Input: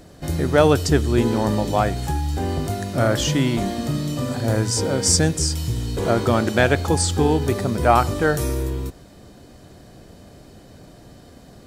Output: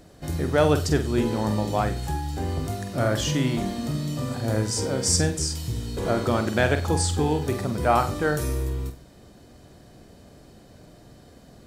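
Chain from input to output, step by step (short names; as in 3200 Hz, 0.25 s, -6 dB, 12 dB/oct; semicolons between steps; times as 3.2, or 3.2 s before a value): flutter echo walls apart 8 m, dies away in 0.3 s; gain -5 dB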